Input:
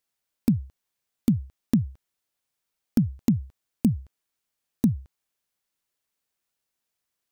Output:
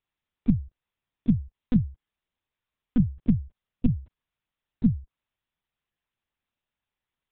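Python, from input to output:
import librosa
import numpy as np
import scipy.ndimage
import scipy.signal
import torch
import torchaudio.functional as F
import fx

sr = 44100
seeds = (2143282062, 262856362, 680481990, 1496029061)

y = fx.lpc_vocoder(x, sr, seeds[0], excitation='pitch_kept', order=8)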